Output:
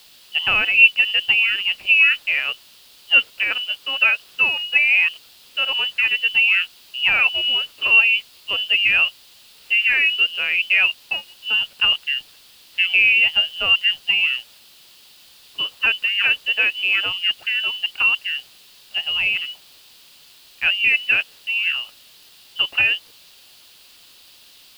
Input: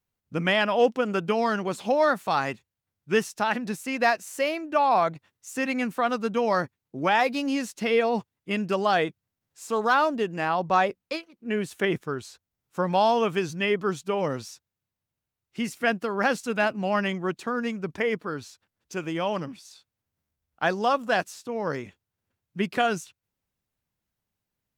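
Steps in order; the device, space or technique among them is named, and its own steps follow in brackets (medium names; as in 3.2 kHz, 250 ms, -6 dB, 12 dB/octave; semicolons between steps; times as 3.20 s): scrambled radio voice (band-pass 320–3000 Hz; frequency inversion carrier 3.2 kHz; white noise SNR 24 dB); high-order bell 3.6 kHz +11 dB 1.1 oct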